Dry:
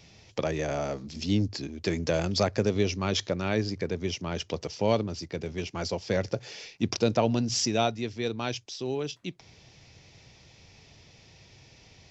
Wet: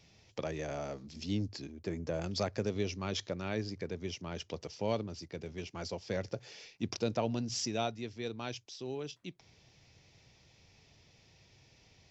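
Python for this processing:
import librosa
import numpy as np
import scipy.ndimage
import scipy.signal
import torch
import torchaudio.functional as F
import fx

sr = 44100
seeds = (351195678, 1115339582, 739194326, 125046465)

y = fx.peak_eq(x, sr, hz=4100.0, db=-10.5, octaves=2.2, at=(1.72, 2.22))
y = F.gain(torch.from_numpy(y), -8.5).numpy()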